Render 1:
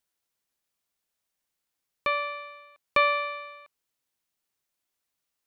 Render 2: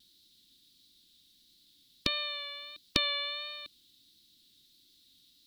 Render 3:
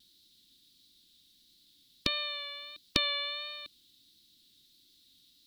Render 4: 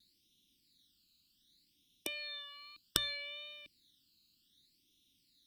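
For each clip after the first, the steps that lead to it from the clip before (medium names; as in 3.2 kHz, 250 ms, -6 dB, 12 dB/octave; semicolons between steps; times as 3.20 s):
FFT filter 150 Hz 0 dB, 300 Hz +5 dB, 490 Hz -16 dB, 780 Hz -28 dB, 2.5 kHz -10 dB, 3.8 kHz +13 dB, 6.4 kHz -7 dB; vibrato 1.5 Hz 30 cents; spectrum-flattening compressor 2:1; trim +8.5 dB
no audible change
Chebyshev shaper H 3 -7 dB, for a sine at -7 dBFS; hum notches 60/120 Hz; phase shifter stages 12, 0.65 Hz, lowest notch 600–1500 Hz; trim +4.5 dB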